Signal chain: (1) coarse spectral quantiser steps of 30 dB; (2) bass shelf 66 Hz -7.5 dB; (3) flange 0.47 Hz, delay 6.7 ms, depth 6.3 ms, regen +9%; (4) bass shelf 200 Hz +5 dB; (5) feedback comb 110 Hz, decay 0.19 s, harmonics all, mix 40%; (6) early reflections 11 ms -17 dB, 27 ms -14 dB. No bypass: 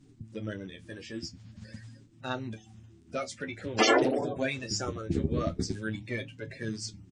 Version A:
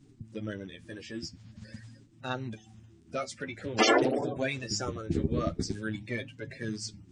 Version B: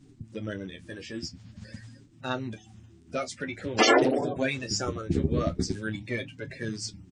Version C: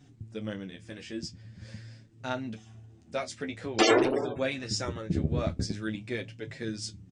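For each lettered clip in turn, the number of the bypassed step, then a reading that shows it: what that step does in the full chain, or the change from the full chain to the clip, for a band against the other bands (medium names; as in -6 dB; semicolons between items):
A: 6, echo-to-direct -12.0 dB to none; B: 5, loudness change +3.0 LU; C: 1, 2 kHz band -1.5 dB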